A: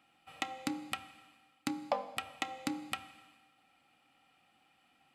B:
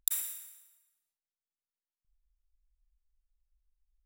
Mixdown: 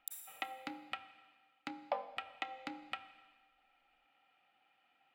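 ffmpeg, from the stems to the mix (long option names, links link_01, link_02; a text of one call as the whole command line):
ffmpeg -i stem1.wav -i stem2.wav -filter_complex "[0:a]acrossover=split=420 3800:gain=0.224 1 0.0891[link_01][link_02][link_03];[link_01][link_02][link_03]amix=inputs=3:normalize=0,bandreject=frequency=1100:width=8.6,volume=-2.5dB[link_04];[1:a]volume=-16dB[link_05];[link_04][link_05]amix=inputs=2:normalize=0" out.wav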